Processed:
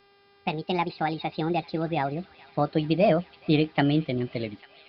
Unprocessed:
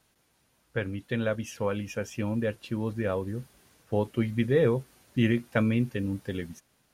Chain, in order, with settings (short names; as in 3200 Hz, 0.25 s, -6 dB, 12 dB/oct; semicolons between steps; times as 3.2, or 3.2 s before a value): speed glide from 164% -> 120%; steep low-pass 4800 Hz 72 dB/oct; buzz 400 Hz, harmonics 13, -63 dBFS -4 dB/oct; on a send: thin delay 0.423 s, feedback 73%, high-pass 1500 Hz, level -18 dB; on the sum: gain +2.5 dB